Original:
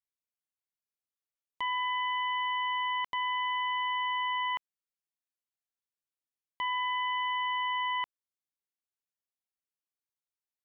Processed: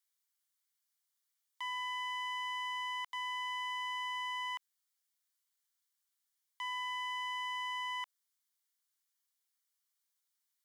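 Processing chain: in parallel at -6 dB: one-sided clip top -44.5 dBFS, bottom -31 dBFS; on the sum: limiter -34.5 dBFS, peak gain reduction 10.5 dB; HPF 890 Hz 24 dB/oct; high shelf 2600 Hz +8 dB; notch 2600 Hz, Q 6.4

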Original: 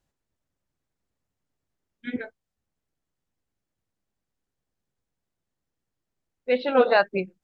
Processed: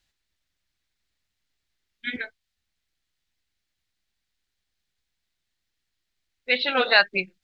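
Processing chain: graphic EQ 125/250/500/1000/2000/4000 Hz -8/-6/-8/-5/+6/+10 dB; gain +3 dB

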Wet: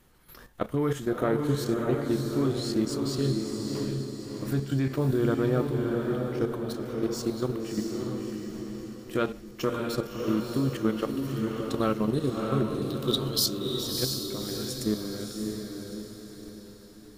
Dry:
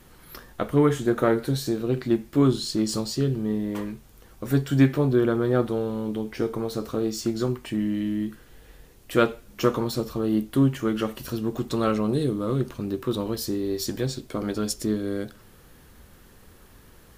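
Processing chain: level quantiser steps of 12 dB; 12.82–13.59 resonant high shelf 2600 Hz +10.5 dB, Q 3; diffused feedback echo 0.638 s, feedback 46%, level -3 dB; gain -1 dB

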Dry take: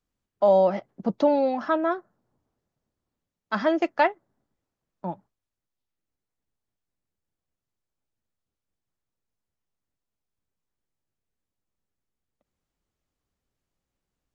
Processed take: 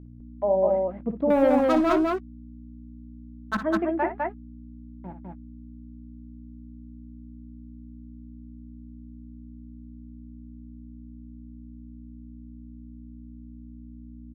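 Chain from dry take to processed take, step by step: per-bin expansion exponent 1.5; sample gate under -40.5 dBFS; LPF 2100 Hz 24 dB/oct; doubler 19 ms -13 dB; 1.3–3.57 sample leveller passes 3; hum 60 Hz, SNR 10 dB; bell 320 Hz +6 dB 1.6 oct; loudspeakers at several distances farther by 20 m -10 dB, 70 m -2 dB; gain -6.5 dB

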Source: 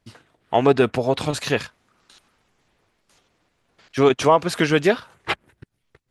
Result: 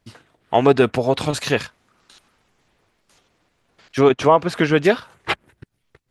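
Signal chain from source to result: 4.01–4.85 high shelf 4600 Hz -11.5 dB; gain +2 dB

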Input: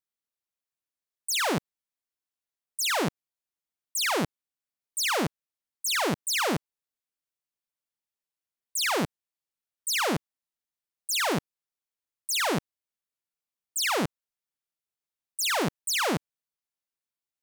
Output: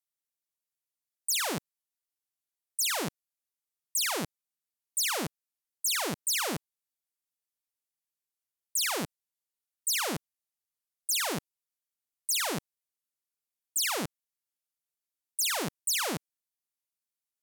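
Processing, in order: bell 13000 Hz +10 dB 2.1 oct; gain -7 dB

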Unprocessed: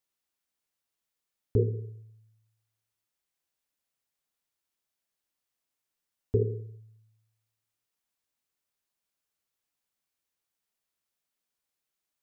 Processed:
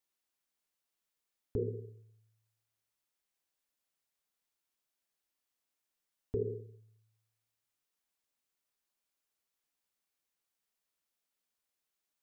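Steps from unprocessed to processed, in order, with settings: bell 110 Hz -8 dB; limiter -23 dBFS, peak gain reduction 8.5 dB; gain -1.5 dB

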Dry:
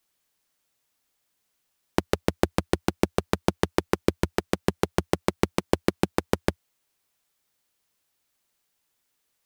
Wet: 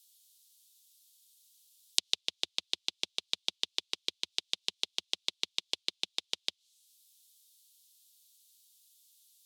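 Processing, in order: differentiator; treble ducked by the level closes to 2900 Hz, closed at -46 dBFS; resonant high shelf 2400 Hz +14 dB, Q 3; gain -3.5 dB

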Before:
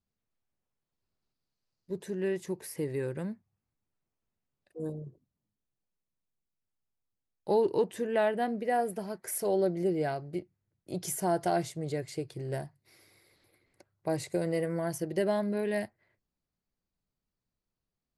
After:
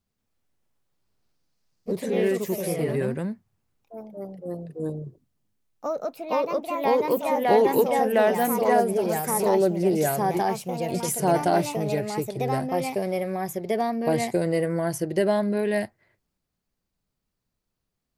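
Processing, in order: echoes that change speed 0.182 s, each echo +2 st, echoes 3; gain +6.5 dB

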